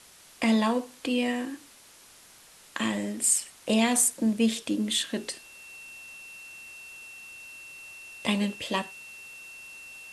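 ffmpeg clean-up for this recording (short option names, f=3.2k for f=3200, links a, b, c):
-af "bandreject=f=2.7k:w=30,afwtdn=0.0028"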